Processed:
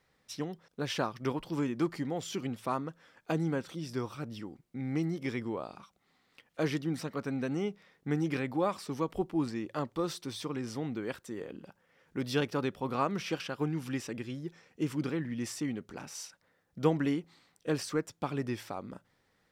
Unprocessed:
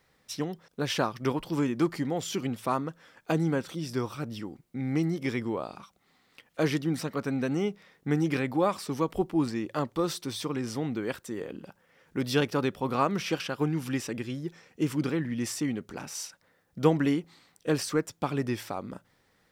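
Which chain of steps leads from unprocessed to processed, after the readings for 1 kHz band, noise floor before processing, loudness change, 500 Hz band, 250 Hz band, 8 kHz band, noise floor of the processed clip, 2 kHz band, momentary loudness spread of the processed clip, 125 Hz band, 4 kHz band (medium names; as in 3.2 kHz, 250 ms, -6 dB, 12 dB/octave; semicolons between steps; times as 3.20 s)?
-4.5 dB, -68 dBFS, -4.5 dB, -4.5 dB, -4.5 dB, -6.0 dB, -73 dBFS, -4.5 dB, 11 LU, -4.5 dB, -5.0 dB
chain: treble shelf 10 kHz -5.5 dB; trim -4.5 dB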